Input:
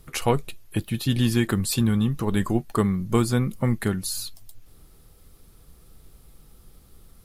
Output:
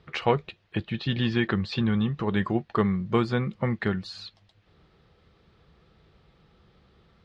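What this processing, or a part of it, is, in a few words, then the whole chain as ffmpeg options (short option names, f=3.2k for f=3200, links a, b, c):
guitar cabinet: -filter_complex "[0:a]asettb=1/sr,asplit=3[a][b][c];[a]atrim=end=0.954[d];[b]atrim=start=0.95:end=1.89,asetpts=PTS-STARTPTS,afade=t=in:d=0.004:c=qsin,afade=t=out:st=0.936:d=0.004:c=qsin,lowpass=f=6.7k:w=0.5412,lowpass=f=6.7k:w=1.3066[e];[c]atrim=start=1.886[f];[d][e]acrossfade=d=0.004:c1=hsin:c2=qsin[g];[g][f]acrossfade=d=0.004:c1=qsin:c2=hsin,highpass=93,equalizer=f=120:t=q:w=4:g=-4,equalizer=f=270:t=q:w=4:g=-8,equalizer=f=1.8k:t=q:w=4:g=3,lowpass=f=3.9k:w=0.5412,lowpass=f=3.9k:w=1.3066"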